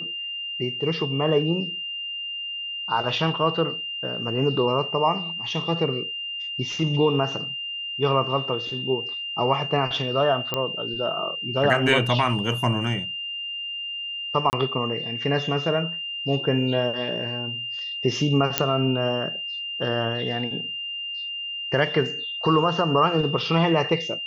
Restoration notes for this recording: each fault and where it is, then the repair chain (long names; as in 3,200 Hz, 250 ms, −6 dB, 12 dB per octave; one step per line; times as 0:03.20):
whistle 2,800 Hz −29 dBFS
0:10.54: click −10 dBFS
0:14.50–0:14.53: drop-out 29 ms
0:18.58: click −1 dBFS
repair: click removal
notch filter 2,800 Hz, Q 30
repair the gap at 0:14.50, 29 ms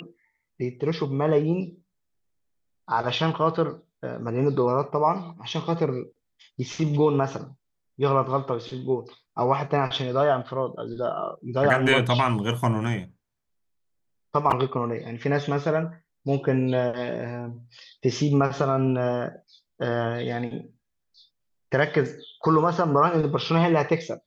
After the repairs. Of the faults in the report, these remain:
none of them is left